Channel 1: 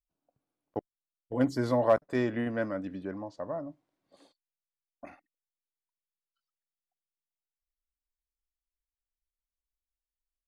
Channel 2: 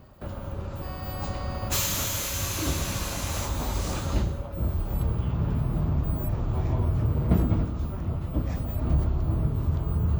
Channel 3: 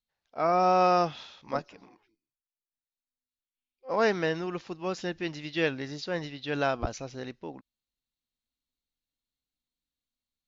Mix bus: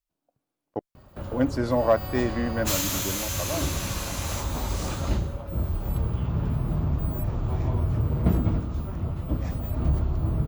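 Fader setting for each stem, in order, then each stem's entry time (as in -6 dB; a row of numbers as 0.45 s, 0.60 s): +3.0 dB, 0.0 dB, mute; 0.00 s, 0.95 s, mute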